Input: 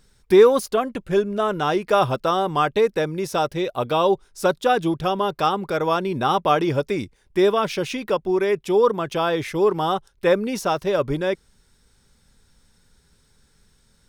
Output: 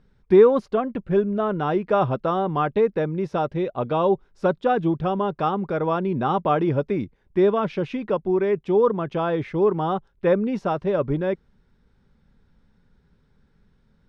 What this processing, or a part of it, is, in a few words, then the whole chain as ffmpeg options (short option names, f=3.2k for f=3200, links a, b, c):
phone in a pocket: -af "lowpass=3.3k,equalizer=f=190:t=o:w=1.1:g=5,highshelf=f=2.1k:g=-9.5,volume=-1.5dB"